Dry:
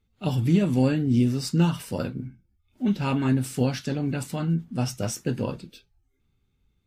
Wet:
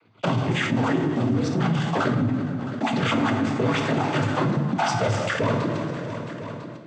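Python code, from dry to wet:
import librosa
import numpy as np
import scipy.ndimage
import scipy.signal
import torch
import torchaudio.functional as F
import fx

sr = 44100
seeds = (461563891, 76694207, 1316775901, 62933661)

y = fx.spec_dropout(x, sr, seeds[0], share_pct=33)
y = scipy.signal.sosfilt(scipy.signal.butter(2, 1500.0, 'lowpass', fs=sr, output='sos'), y)
y = fx.low_shelf(y, sr, hz=480.0, db=-12.0)
y = fx.rider(y, sr, range_db=10, speed_s=0.5)
y = fx.leveller(y, sr, passes=5)
y = fx.noise_vocoder(y, sr, seeds[1], bands=16)
y = fx.echo_feedback(y, sr, ms=333, feedback_pct=43, wet_db=-24)
y = fx.rev_plate(y, sr, seeds[2], rt60_s=0.98, hf_ratio=0.85, predelay_ms=0, drr_db=4.5)
y = fx.env_flatten(y, sr, amount_pct=70)
y = y * 10.0 ** (-3.5 / 20.0)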